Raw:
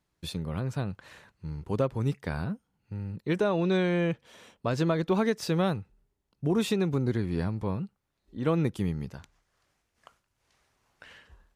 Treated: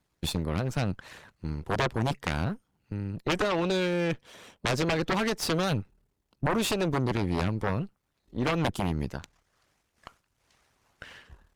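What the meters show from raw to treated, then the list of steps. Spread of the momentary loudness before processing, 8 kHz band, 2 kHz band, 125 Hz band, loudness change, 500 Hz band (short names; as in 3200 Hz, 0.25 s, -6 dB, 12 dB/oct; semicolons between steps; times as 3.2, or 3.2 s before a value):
14 LU, +7.0 dB, +5.0 dB, -0.5 dB, 0.0 dB, -1.0 dB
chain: half-wave gain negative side -7 dB; harmonic-percussive split harmonic -8 dB; added harmonics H 3 -7 dB, 6 -12 dB, 7 -10 dB, 8 -7 dB, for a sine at -16 dBFS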